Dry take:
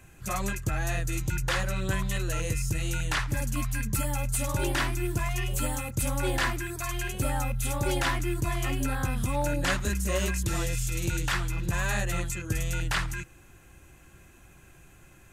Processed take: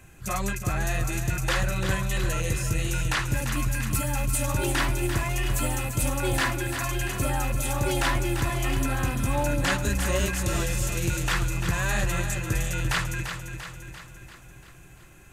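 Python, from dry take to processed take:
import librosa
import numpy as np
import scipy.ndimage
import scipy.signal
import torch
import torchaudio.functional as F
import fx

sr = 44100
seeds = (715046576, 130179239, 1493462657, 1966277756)

y = fx.echo_feedback(x, sr, ms=343, feedback_pct=56, wet_db=-8.0)
y = y * librosa.db_to_amplitude(2.0)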